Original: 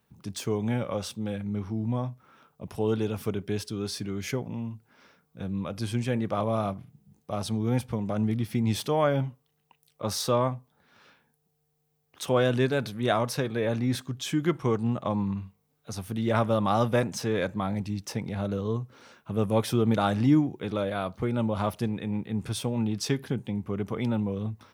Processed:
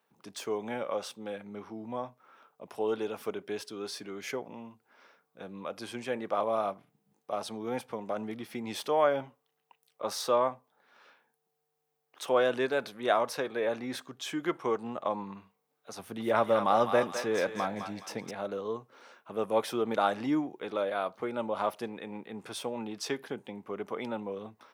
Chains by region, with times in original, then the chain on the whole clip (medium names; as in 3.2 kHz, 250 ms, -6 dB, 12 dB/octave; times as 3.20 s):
15.99–18.31 s: bass shelf 200 Hz +8.5 dB + thinning echo 209 ms, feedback 46%, high-pass 1.1 kHz, level -4.5 dB
whole clip: high-pass 470 Hz 12 dB/octave; treble shelf 2.5 kHz -8 dB; trim +1.5 dB